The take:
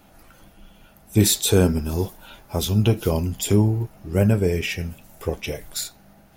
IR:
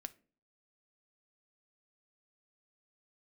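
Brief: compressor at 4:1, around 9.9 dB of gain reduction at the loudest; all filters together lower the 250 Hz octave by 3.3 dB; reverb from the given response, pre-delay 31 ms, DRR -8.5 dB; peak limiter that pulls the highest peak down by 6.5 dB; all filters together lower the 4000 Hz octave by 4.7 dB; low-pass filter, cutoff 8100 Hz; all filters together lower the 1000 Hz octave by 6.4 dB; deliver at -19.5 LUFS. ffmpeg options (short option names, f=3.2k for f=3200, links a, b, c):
-filter_complex "[0:a]lowpass=8.1k,equalizer=f=250:t=o:g=-4,equalizer=f=1k:t=o:g=-8.5,equalizer=f=4k:t=o:g=-5,acompressor=threshold=-26dB:ratio=4,alimiter=limit=-22dB:level=0:latency=1,asplit=2[a][b];[1:a]atrim=start_sample=2205,adelay=31[c];[b][c]afir=irnorm=-1:irlink=0,volume=13dB[d];[a][d]amix=inputs=2:normalize=0,volume=5dB"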